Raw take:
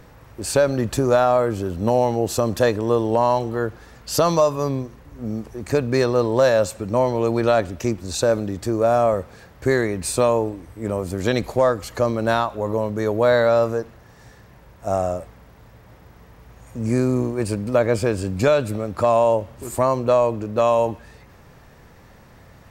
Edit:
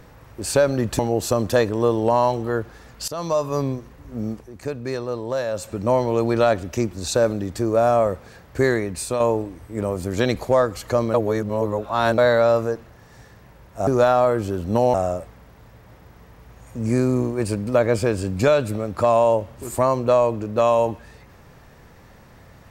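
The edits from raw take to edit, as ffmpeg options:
-filter_complex "[0:a]asplit=10[a][b][c][d][e][f][g][h][i][j];[a]atrim=end=0.992[k];[b]atrim=start=2.058:end=4.15,asetpts=PTS-STARTPTS,afade=t=out:st=2.088:d=0.004:c=hsin:silence=0.105925[l];[c]atrim=start=4.15:end=5.57,asetpts=PTS-STARTPTS,afade=t=in:d=0.49:silence=0.105925,afade=t=out:st=1.23:d=0.19:silence=0.375837[m];[d]atrim=start=5.57:end=6.6,asetpts=PTS-STARTPTS,volume=-8.5dB[n];[e]atrim=start=6.6:end=10.27,asetpts=PTS-STARTPTS,afade=t=in:d=0.19:silence=0.375837,afade=t=out:st=3.19:d=0.48:silence=0.446684[o];[f]atrim=start=10.27:end=12.212,asetpts=PTS-STARTPTS,afade=t=in:d=0.004:c=hsin:silence=0.446684[p];[g]atrim=start=12.208:end=13.252,asetpts=PTS-STARTPTS,areverse[q];[h]atrim=start=13.248:end=14.942[r];[i]atrim=start=0.988:end=2.062[s];[j]atrim=start=14.938[t];[l][m][n][o][p]concat=n=5:v=0:a=1[u];[k][u]acrossfade=d=0.004:c1=hsin:c2=hsin[v];[v][q]acrossfade=d=0.004:c1=hsin:c2=hsin[w];[w][r]acrossfade=d=0.004:c1=hsin:c2=hsin[x];[x][s]acrossfade=d=0.004:c1=hsin:c2=hsin[y];[y][t]acrossfade=d=0.004:c1=hsin:c2=hsin"

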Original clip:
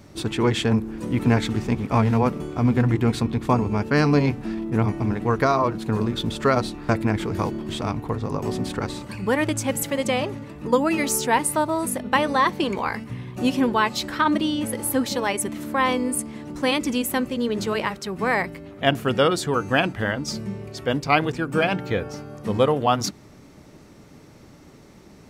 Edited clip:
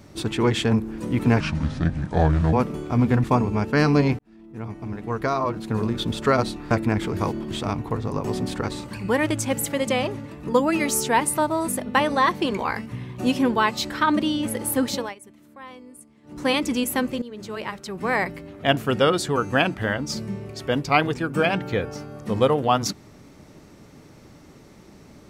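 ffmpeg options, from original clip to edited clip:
-filter_complex "[0:a]asplit=8[a][b][c][d][e][f][g][h];[a]atrim=end=1.404[i];[b]atrim=start=1.4:end=2.19,asetpts=PTS-STARTPTS,asetrate=30870,aresample=44100[j];[c]atrim=start=2.186:end=2.902[k];[d]atrim=start=3.418:end=4.37,asetpts=PTS-STARTPTS,afade=t=out:st=0.948:d=0.004:c=hsin[l];[e]atrim=start=4.37:end=15.33,asetpts=PTS-STARTPTS,afade=t=in:d=1.83,afade=t=out:st=10.75:d=0.21:silence=0.0944061[m];[f]atrim=start=15.33:end=16.41,asetpts=PTS-STARTPTS,volume=-20.5dB[n];[g]atrim=start=16.41:end=17.4,asetpts=PTS-STARTPTS,afade=t=in:d=0.21:silence=0.0944061,afade=t=out:st=0.986:d=0.004:c=hsin:silence=0.141254[o];[h]atrim=start=17.4,asetpts=PTS-STARTPTS,afade=t=in:d=1.05:silence=0.141254[p];[i][j]acrossfade=d=0.004:c1=hsin:c2=hsin[q];[q][k]acrossfade=d=0.004:c1=hsin:c2=hsin[r];[l][m][n][o][p]concat=n=5:v=0:a=1[s];[r][s]acrossfade=d=0.004:c1=hsin:c2=hsin"

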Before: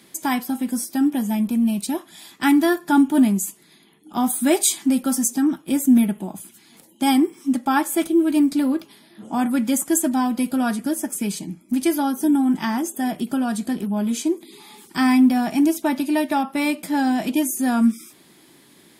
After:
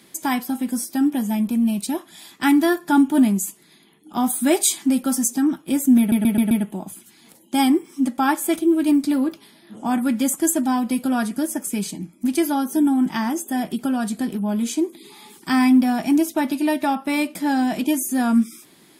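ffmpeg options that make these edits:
-filter_complex "[0:a]asplit=5[a][b][c][d][e];[a]atrim=end=6.122[f];[b]atrim=start=5.988:end=6.122[g];[c]atrim=start=5.988:end=6.122[h];[d]atrim=start=5.988:end=6.122[i];[e]atrim=start=5.988[j];[f][g]acrossfade=d=0.004:c1=hsin:c2=hsin[k];[k][h]acrossfade=d=0.004:c1=hsin:c2=hsin[l];[l][i]acrossfade=d=0.004:c1=hsin:c2=hsin[m];[m][j]acrossfade=d=0.004:c1=hsin:c2=hsin"

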